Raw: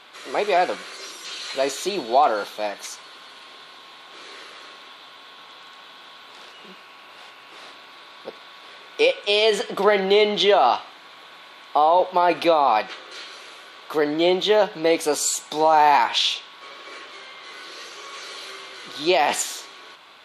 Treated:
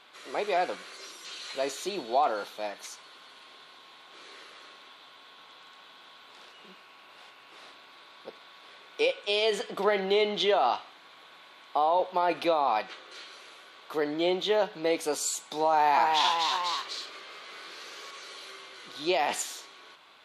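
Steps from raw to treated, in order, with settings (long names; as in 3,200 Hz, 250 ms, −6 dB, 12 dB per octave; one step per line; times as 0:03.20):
0:15.69–0:18.11: delay with pitch and tempo change per echo 273 ms, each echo +1 semitone, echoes 3
level −8 dB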